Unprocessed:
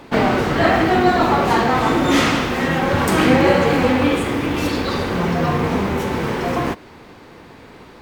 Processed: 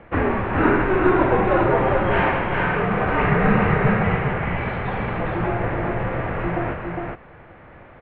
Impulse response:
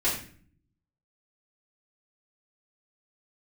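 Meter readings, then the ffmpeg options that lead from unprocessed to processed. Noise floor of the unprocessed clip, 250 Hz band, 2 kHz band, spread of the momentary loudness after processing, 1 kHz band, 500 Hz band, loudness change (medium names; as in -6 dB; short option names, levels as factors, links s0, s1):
-43 dBFS, -5.0 dB, -2.0 dB, 8 LU, -3.5 dB, -2.5 dB, -3.5 dB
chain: -af "highpass=f=400:t=q:w=0.5412,highpass=f=400:t=q:w=1.307,lowpass=f=2800:t=q:w=0.5176,lowpass=f=2800:t=q:w=0.7071,lowpass=f=2800:t=q:w=1.932,afreqshift=-360,aecho=1:1:408:0.668,volume=0.841"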